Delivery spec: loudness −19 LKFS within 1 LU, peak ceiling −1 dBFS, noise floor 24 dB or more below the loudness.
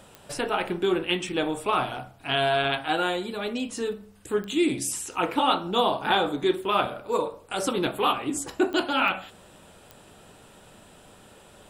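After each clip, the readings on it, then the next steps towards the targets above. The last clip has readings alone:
number of clicks 5; integrated loudness −26.0 LKFS; sample peak −10.0 dBFS; target loudness −19.0 LKFS
→ click removal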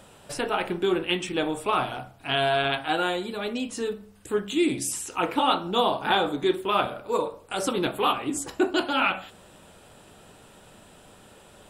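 number of clicks 0; integrated loudness −26.0 LKFS; sample peak −10.0 dBFS; target loudness −19.0 LKFS
→ level +7 dB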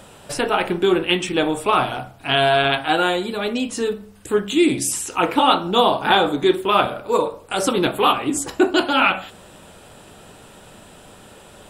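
integrated loudness −19.0 LKFS; sample peak −3.0 dBFS; background noise floor −45 dBFS

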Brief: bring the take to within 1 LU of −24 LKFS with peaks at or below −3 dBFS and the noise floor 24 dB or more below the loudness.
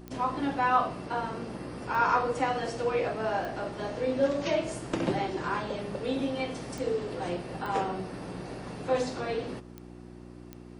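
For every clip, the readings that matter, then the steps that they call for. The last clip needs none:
number of clicks 7; mains hum 60 Hz; hum harmonics up to 360 Hz; level of the hum −43 dBFS; integrated loudness −31.0 LKFS; sample peak −12.0 dBFS; target loudness −24.0 LKFS
→ click removal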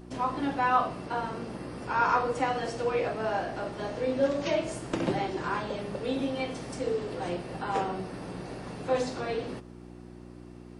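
number of clicks 0; mains hum 60 Hz; hum harmonics up to 360 Hz; level of the hum −43 dBFS
→ hum removal 60 Hz, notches 6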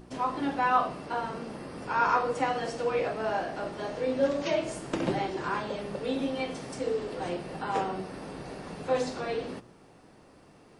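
mains hum none found; integrated loudness −31.0 LKFS; sample peak −12.0 dBFS; target loudness −24.0 LKFS
→ level +7 dB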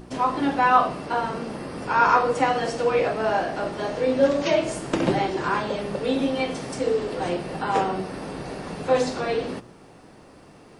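integrated loudness −24.0 LKFS; sample peak −5.0 dBFS; background noise floor −49 dBFS

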